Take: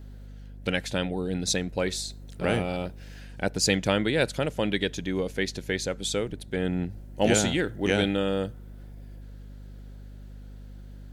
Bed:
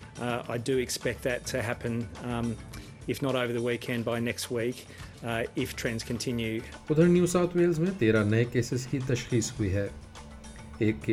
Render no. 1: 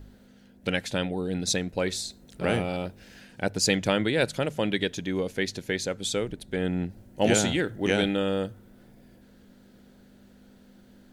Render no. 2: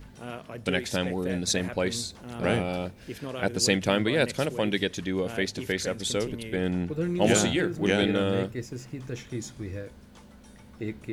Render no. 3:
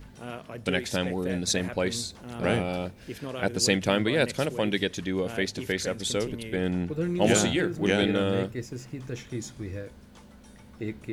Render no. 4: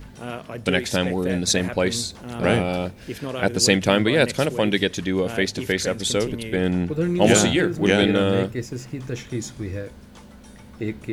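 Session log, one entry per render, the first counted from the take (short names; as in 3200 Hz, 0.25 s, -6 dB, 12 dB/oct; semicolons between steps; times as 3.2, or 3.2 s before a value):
de-hum 50 Hz, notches 3
add bed -7.5 dB
nothing audible
gain +6 dB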